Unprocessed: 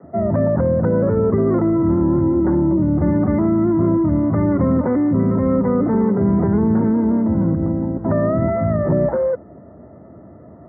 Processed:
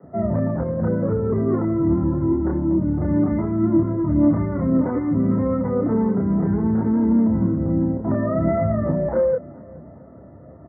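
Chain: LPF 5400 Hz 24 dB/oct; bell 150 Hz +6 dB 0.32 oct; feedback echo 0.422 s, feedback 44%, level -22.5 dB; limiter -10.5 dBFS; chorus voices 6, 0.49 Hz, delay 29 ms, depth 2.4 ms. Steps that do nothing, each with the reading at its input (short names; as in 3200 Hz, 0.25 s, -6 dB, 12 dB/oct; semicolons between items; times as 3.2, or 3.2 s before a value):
LPF 5400 Hz: input band ends at 1400 Hz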